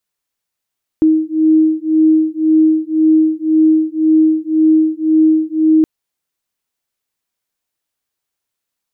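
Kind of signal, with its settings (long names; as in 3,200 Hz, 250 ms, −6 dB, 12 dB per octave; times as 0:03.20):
two tones that beat 314 Hz, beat 1.9 Hz, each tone −12 dBFS 4.82 s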